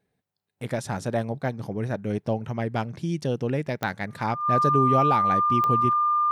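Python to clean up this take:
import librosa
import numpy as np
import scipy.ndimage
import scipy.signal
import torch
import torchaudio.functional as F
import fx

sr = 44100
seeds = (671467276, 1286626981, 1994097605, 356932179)

y = fx.fix_declick_ar(x, sr, threshold=10.0)
y = fx.notch(y, sr, hz=1200.0, q=30.0)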